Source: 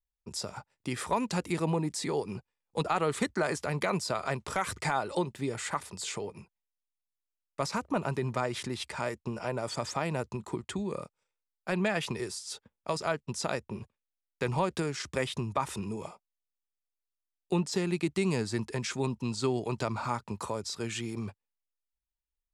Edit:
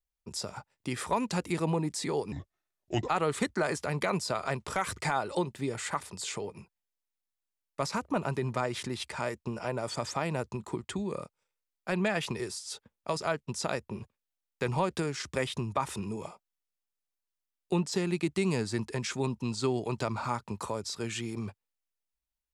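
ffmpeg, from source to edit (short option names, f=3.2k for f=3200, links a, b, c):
-filter_complex "[0:a]asplit=3[a][b][c];[a]atrim=end=2.324[d];[b]atrim=start=2.32:end=2.89,asetpts=PTS-STARTPTS,asetrate=32634,aresample=44100[e];[c]atrim=start=2.886[f];[d][e]acrossfade=d=0.004:c1=hsin:c2=hsin[g];[g][f]acrossfade=d=0.004:c1=hsin:c2=hsin"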